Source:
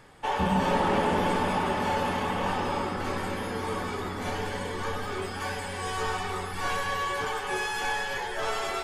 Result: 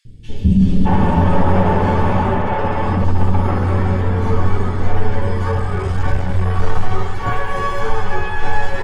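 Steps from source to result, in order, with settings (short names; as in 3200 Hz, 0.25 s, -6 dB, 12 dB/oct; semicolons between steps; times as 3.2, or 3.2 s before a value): 5.51–6.29 cycle switcher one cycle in 3, muted; RIAA curve playback; 2.26–2.97 negative-ratio compressor -25 dBFS, ratio -1; 7.22–7.82 short-mantissa float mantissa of 6-bit; flange 0.42 Hz, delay 8.6 ms, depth 2.9 ms, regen +65%; three bands offset in time highs, lows, mids 50/620 ms, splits 320/3300 Hz; maximiser +14.5 dB; gain -2.5 dB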